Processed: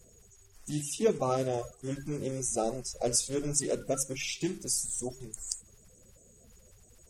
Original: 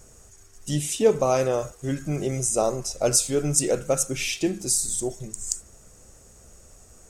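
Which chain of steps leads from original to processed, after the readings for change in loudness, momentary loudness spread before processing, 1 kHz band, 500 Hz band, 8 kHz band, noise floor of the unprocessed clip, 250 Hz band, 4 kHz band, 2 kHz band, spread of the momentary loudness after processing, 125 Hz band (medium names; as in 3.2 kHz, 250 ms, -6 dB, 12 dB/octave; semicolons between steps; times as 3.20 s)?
-7.5 dB, 10 LU, -6.5 dB, -8.5 dB, -7.5 dB, -52 dBFS, -6.5 dB, -7.0 dB, -8.5 dB, 10 LU, -8.5 dB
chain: coarse spectral quantiser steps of 30 dB; de-hum 140.5 Hz, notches 2; trim -7 dB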